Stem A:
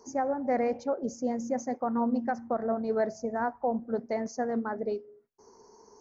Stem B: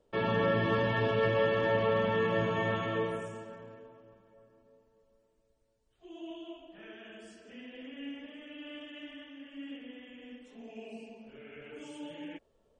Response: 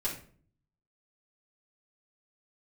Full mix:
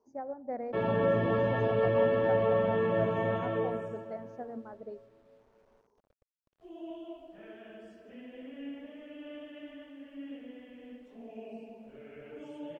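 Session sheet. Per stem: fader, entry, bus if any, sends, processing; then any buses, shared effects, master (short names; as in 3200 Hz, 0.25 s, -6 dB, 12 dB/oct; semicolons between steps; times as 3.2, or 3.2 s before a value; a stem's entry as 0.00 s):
-9.5 dB, 0.00 s, no send, upward expander 1.5:1, over -39 dBFS
+0.5 dB, 0.60 s, no send, bit-crush 11-bit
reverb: off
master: LPF 1200 Hz 6 dB/oct; bell 610 Hz +5 dB 0.47 oct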